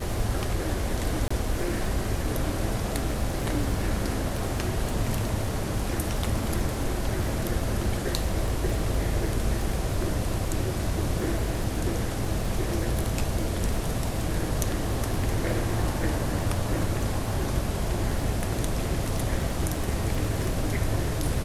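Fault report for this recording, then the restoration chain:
surface crackle 22 per second −30 dBFS
0:01.28–0:01.30: drop-out 25 ms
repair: click removal
repair the gap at 0:01.28, 25 ms

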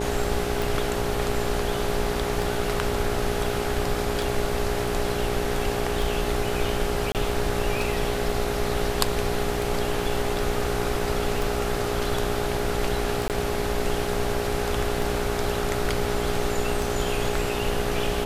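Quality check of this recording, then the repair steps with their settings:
mains buzz 60 Hz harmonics 14 −30 dBFS
scratch tick 33 1/3 rpm
whistle 410 Hz −29 dBFS
0:07.12–0:07.15: drop-out 28 ms
0:13.28–0:13.30: drop-out 18 ms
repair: click removal
hum removal 60 Hz, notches 14
notch filter 410 Hz, Q 30
repair the gap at 0:07.12, 28 ms
repair the gap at 0:13.28, 18 ms

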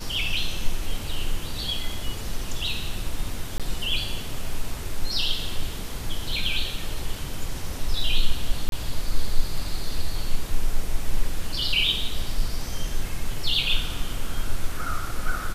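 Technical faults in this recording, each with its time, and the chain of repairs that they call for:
0:03.58–0:03.60: drop-out 17 ms
0:08.69–0:08.72: drop-out 32 ms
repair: repair the gap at 0:03.58, 17 ms
repair the gap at 0:08.69, 32 ms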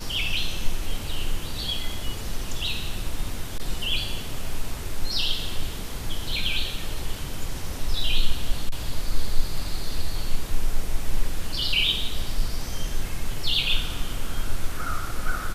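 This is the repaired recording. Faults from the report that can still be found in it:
none of them is left

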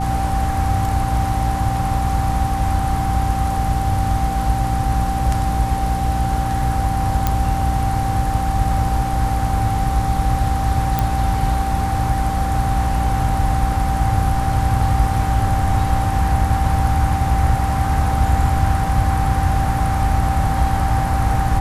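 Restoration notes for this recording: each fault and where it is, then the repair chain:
mains hum 60 Hz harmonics 5 −23 dBFS
whistle 780 Hz −22 dBFS
0:07.27: click −3 dBFS
0:10.99: click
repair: click removal
hum removal 60 Hz, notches 5
notch filter 780 Hz, Q 30

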